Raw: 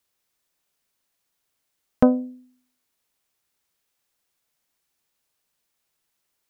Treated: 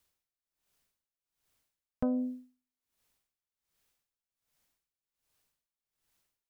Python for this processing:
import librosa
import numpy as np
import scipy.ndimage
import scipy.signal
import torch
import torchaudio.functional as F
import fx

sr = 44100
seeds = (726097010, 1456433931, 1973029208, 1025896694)

y = fx.low_shelf(x, sr, hz=110.0, db=11.0)
y = y * 10.0 ** (-22 * (0.5 - 0.5 * np.cos(2.0 * np.pi * 1.3 * np.arange(len(y)) / sr)) / 20.0)